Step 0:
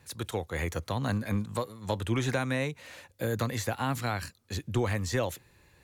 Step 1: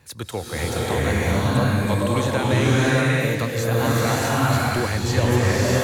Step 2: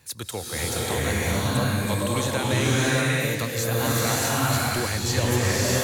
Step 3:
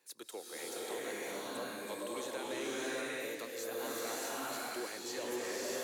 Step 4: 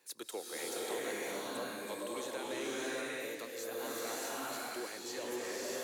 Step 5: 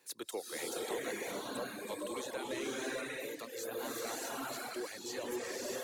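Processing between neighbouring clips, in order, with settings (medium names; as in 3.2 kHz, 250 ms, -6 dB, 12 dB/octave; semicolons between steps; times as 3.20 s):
swelling reverb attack 630 ms, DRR -7 dB; trim +4 dB
treble shelf 3.4 kHz +10.5 dB; trim -4.5 dB
ladder high-pass 290 Hz, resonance 40%; saturation -22 dBFS, distortion -23 dB; trim -7 dB
gain riding within 5 dB 2 s
reverb removal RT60 0.91 s; bass shelf 150 Hz +6.5 dB; trim +1.5 dB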